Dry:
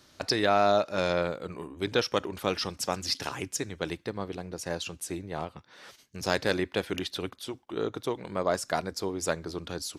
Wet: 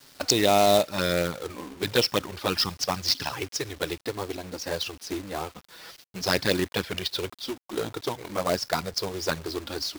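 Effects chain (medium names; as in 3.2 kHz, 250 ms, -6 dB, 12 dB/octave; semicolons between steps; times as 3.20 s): resonant high shelf 6.5 kHz -9 dB, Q 3; touch-sensitive flanger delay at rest 7.7 ms, full sweep at -20.5 dBFS; companded quantiser 4-bit; trim +5 dB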